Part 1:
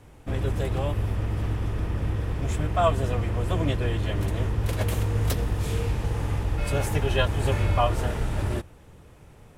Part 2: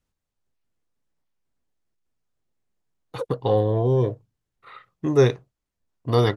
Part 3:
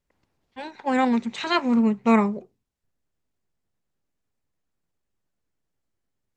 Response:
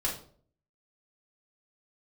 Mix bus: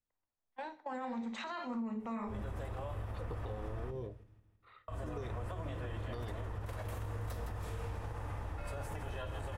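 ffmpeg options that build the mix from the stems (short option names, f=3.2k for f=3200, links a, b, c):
-filter_complex "[0:a]adelay=2000,volume=-5.5dB,asplit=3[a][b][c];[a]atrim=end=3.91,asetpts=PTS-STARTPTS,afade=t=out:st=3.906:d=0.004:c=hsin[d];[b]atrim=start=3.91:end=4.88,asetpts=PTS-STARTPTS,volume=0[e];[c]atrim=start=4.88,asetpts=PTS-STARTPTS,afade=t=in:d=0.004:c=hsin[f];[d][e][f]concat=n=3:v=0:a=1,asplit=3[g][h][i];[h]volume=-20dB[j];[i]volume=-22dB[k];[1:a]acompressor=threshold=-21dB:ratio=6,volume=-17dB,asplit=2[l][m];[m]volume=-19dB[n];[2:a]agate=range=-16dB:threshold=-39dB:ratio=16:detection=peak,bandreject=f=60:t=h:w=6,bandreject=f=120:t=h:w=6,bandreject=f=180:t=h:w=6,bandreject=f=240:t=h:w=6,volume=-3dB,asplit=2[o][p];[p]volume=-20.5dB[q];[g][o]amix=inputs=2:normalize=0,acrossover=split=470 2000:gain=0.224 1 0.251[r][s][t];[r][s][t]amix=inputs=3:normalize=0,acompressor=threshold=-37dB:ratio=6,volume=0dB[u];[3:a]atrim=start_sample=2205[v];[j][n][q]amix=inputs=3:normalize=0[w];[w][v]afir=irnorm=-1:irlink=0[x];[k]aecho=0:1:163|326|489|652|815|978|1141|1304:1|0.52|0.27|0.141|0.0731|0.038|0.0198|0.0103[y];[l][u][x][y]amix=inputs=4:normalize=0,alimiter=level_in=8dB:limit=-24dB:level=0:latency=1:release=69,volume=-8dB"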